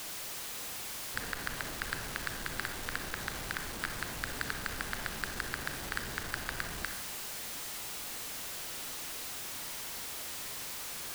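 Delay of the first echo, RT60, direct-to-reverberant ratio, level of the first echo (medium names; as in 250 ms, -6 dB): no echo, 0.85 s, 6.0 dB, no echo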